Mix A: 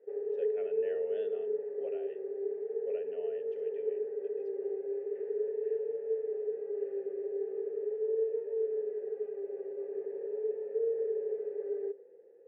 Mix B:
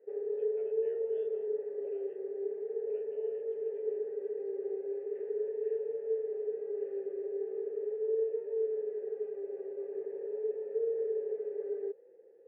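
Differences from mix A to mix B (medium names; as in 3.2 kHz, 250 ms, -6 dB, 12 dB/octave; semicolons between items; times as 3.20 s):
speech -11.0 dB; reverb: off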